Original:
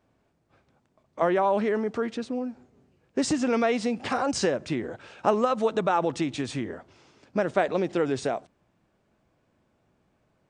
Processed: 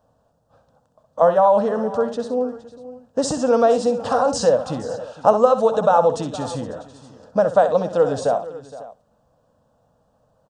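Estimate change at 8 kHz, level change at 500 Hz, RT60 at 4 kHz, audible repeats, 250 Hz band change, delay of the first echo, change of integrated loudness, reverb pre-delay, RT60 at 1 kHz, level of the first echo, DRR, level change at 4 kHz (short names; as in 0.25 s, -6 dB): +5.0 dB, +9.5 dB, none, 3, +1.5 dB, 64 ms, +8.0 dB, none, none, -10.5 dB, none, +2.5 dB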